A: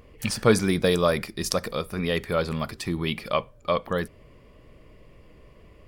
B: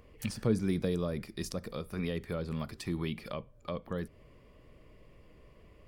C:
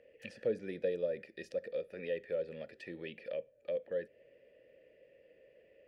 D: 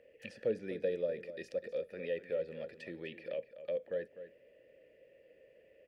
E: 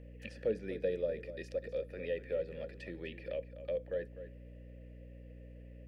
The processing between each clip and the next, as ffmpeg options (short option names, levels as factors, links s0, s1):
-filter_complex "[0:a]acrossover=split=400[s0][s1];[s1]acompressor=threshold=0.02:ratio=10[s2];[s0][s2]amix=inputs=2:normalize=0,volume=0.501"
-filter_complex "[0:a]asplit=3[s0][s1][s2];[s0]bandpass=f=530:t=q:w=8,volume=1[s3];[s1]bandpass=f=1840:t=q:w=8,volume=0.501[s4];[s2]bandpass=f=2480:t=q:w=8,volume=0.355[s5];[s3][s4][s5]amix=inputs=3:normalize=0,volume=2.37"
-filter_complex "[0:a]asplit=2[s0][s1];[s1]adelay=250.7,volume=0.251,highshelf=f=4000:g=-5.64[s2];[s0][s2]amix=inputs=2:normalize=0"
-af "aeval=exprs='val(0)+0.00316*(sin(2*PI*60*n/s)+sin(2*PI*2*60*n/s)/2+sin(2*PI*3*60*n/s)/3+sin(2*PI*4*60*n/s)/4+sin(2*PI*5*60*n/s)/5)':c=same"